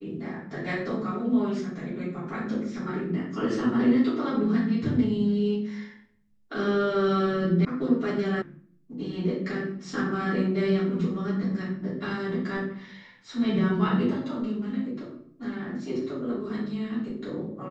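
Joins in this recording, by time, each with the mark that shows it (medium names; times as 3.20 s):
7.65 s: sound stops dead
8.42 s: sound stops dead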